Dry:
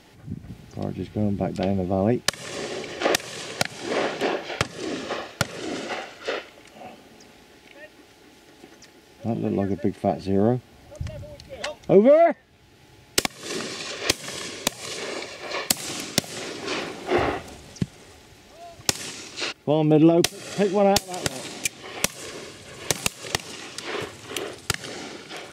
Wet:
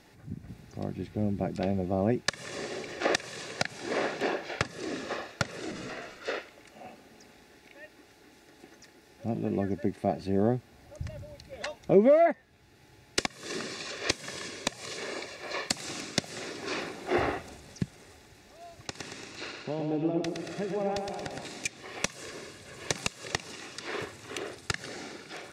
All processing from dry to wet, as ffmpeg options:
-filter_complex "[0:a]asettb=1/sr,asplit=3[a][b][c];[a]atrim=end=5.714[d];[b]atrim=start=5.71:end=6.2,asetpts=PTS-STARTPTS,afade=t=in:d=0.004:c=qsin,afade=t=out:st=0.486:d=0.004:c=qsin,acompressor=threshold=-31dB:ratio=6:attack=3.2:release=140:knee=1:detection=peak,afreqshift=-90,asplit=2[e][f];[f]adelay=16,volume=-6dB[g];[e][g]amix=inputs=2:normalize=0,atrim=end_sample=21609[h];[c]atrim=start=6.196[i];[d][h]acrossfade=d=0.004:c1=hsin:c2=qsin[j];[j][i]acrossfade=d=0.004:c1=qsin:c2=hsin,asettb=1/sr,asplit=3[k][l][m];[k]atrim=end=18.874[n];[l]atrim=start=18.87:end=21.45,asetpts=PTS-STARTPTS,afade=t=in:d=0.004:c=qsin,afade=t=out:st=2.576:d=0.004:c=qsin,aemphasis=mode=reproduction:type=50kf,acompressor=threshold=-36dB:ratio=1.5:attack=3.2:release=140:knee=1:detection=peak,aecho=1:1:114|228|342|456|570|684|798|912:0.596|0.351|0.207|0.122|0.0722|0.0426|0.0251|0.0148,atrim=end_sample=113778[o];[m]atrim=start=21.446[p];[n][o]acrossfade=d=0.004:c1=hsin:c2=qsin[q];[q][p]acrossfade=d=0.004:c1=qsin:c2=hsin,acrossover=split=8200[r][s];[s]acompressor=threshold=-52dB:ratio=4:attack=1:release=60[t];[r][t]amix=inputs=2:normalize=0,equalizer=f=1.7k:w=5.8:g=3.5,bandreject=f=3.1k:w=8.6,volume=-5.5dB"

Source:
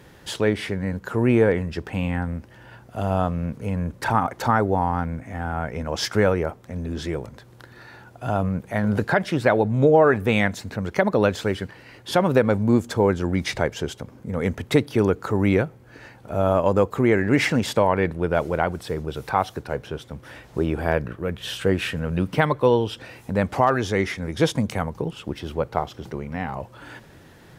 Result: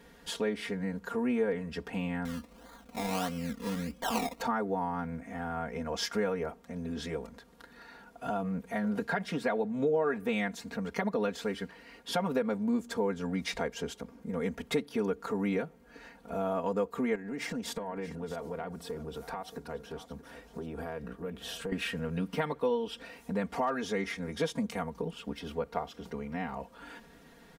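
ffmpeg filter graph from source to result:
-filter_complex "[0:a]asettb=1/sr,asplit=3[a][b][c];[a]atrim=end=2.254[d];[b]atrim=start=2.25:end=4.41,asetpts=PTS-STARTPTS,afade=t=in:d=0.004:c=qsin,afade=t=out:st=2.156:d=0.004:c=qsin,aecho=1:1:3.8:0.5,atrim=end_sample=95256,acrusher=samples=23:mix=1:aa=0.000001:lfo=1:lforange=13.8:lforate=1.6[e];[c]atrim=start=4.406[f];[d][e]acrossfade=d=0.004:c1=hsin:c2=qsin[g];[g][f]acrossfade=d=0.004:c1=qsin:c2=hsin,asettb=1/sr,asplit=3[h][i][j];[h]atrim=end=17.154[k];[i]atrim=start=17.15:end=21.72,asetpts=PTS-STARTPTS,afade=t=in:d=0.004:c=qsin,afade=t=out:st=4.566:d=0.004:c=qsin,equalizer=f=2.4k:w=0.87:g=-5,acompressor=threshold=-26dB:ratio=6:attack=3.2:release=140:knee=1:detection=peak,aecho=1:1:628:0.188,atrim=end_sample=201537[l];[j]atrim=start=21.716[m];[k][l]acrossfade=d=0.004:c1=hsin:c2=qsin[n];[n][m]acrossfade=d=0.004:c1=qsin:c2=hsin,equalizer=f=95:w=3.3:g=-10,aecho=1:1:4.3:0.98,acompressor=threshold=-22dB:ratio=2,volume=-9dB"

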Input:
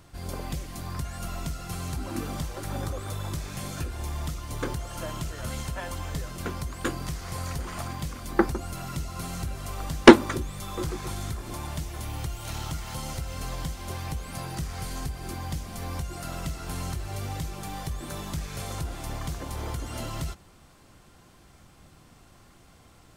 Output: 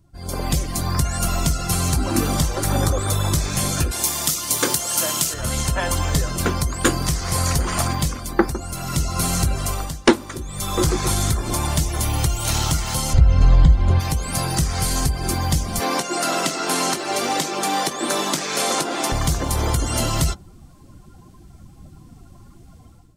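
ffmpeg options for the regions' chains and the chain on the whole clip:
-filter_complex "[0:a]asettb=1/sr,asplit=3[a][b][c];[a]atrim=end=3.914[d];[b]atrim=start=3.91:end=5.34,asetpts=PTS-STARTPTS,afade=t=in:d=0.004:c=qsin,afade=t=out:st=1.426:d=0.004:c=qsin,highpass=190,highshelf=f=2.5k:g=9.5[e];[c]atrim=start=5.336[f];[d][e]acrossfade=d=0.004:c1=hsin:c2=qsin[g];[g][f]acrossfade=d=0.004:c1=qsin:c2=hsin,asettb=1/sr,asplit=3[h][i][j];[h]atrim=end=13.134[k];[i]atrim=start=13.13:end=14,asetpts=PTS-STARTPTS,afade=t=in:d=0.004:c=qsin,afade=t=out:st=0.866:d=0.004:c=qsin,aemphasis=mode=reproduction:type=bsi,bandreject=f=5.6k:w=13[l];[j]atrim=start=13.996[m];[k][l]acrossfade=d=0.004:c1=hsin:c2=qsin[n];[n][m]acrossfade=d=0.004:c1=qsin:c2=hsin,asettb=1/sr,asplit=3[o][p][q];[o]atrim=end=15.804[r];[p]atrim=start=15.8:end=19.12,asetpts=PTS-STARTPTS,afade=t=in:d=0.004:c=qsin,afade=t=out:st=3.316:d=0.004:c=qsin,highpass=f=250:w=0.5412,highpass=f=250:w=1.3066,highshelf=f=6.9k:g=-8.5,acontrast=26[s];[q]atrim=start=19.116[t];[r][s]acrossfade=d=0.004:c1=hsin:c2=qsin[u];[u][t]acrossfade=d=0.004:c1=qsin:c2=hsin,afftdn=nr=18:nf=-50,bass=f=250:g=0,treble=f=4k:g=8,dynaudnorm=f=150:g=5:m=13.5dB,volume=-1dB"

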